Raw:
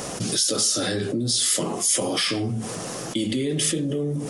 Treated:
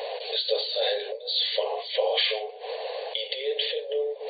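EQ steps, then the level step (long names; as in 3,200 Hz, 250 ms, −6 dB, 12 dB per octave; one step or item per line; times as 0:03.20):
linear-phase brick-wall band-pass 420–4,600 Hz
phaser with its sweep stopped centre 540 Hz, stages 4
+4.5 dB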